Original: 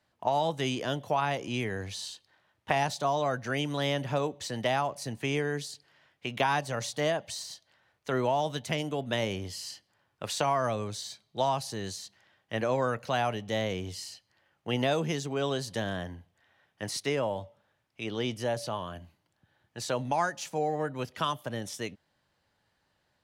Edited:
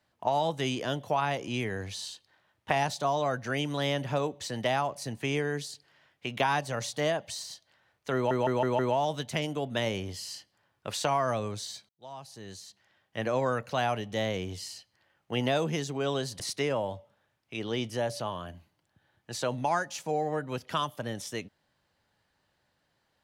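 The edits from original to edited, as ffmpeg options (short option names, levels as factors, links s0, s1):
-filter_complex "[0:a]asplit=7[s0][s1][s2][s3][s4][s5][s6];[s0]atrim=end=8.312[s7];[s1]atrim=start=8.148:end=8.312[s8];[s2]atrim=start=8.148:end=8.312[s9];[s3]atrim=start=8.148:end=8.312[s10];[s4]atrim=start=8.148:end=11.25,asetpts=PTS-STARTPTS,afade=t=out:st=3.098:d=0.004:c=hsin[s11];[s5]atrim=start=11.25:end=15.762,asetpts=PTS-STARTPTS,afade=t=in:d=1.49[s12];[s6]atrim=start=16.868[s13];[s7][s8]acrossfade=d=0.004:c1=hsin:c2=hsin[s14];[s14][s9]acrossfade=d=0.004:c1=hsin:c2=hsin[s15];[s15][s10]acrossfade=d=0.004:c1=hsin:c2=hsin[s16];[s11][s12]concat=n=2:v=0:a=1[s17];[s16][s17]acrossfade=d=0.004:c1=hsin:c2=hsin[s18];[s18][s13]acrossfade=d=0.004:c1=hsin:c2=hsin"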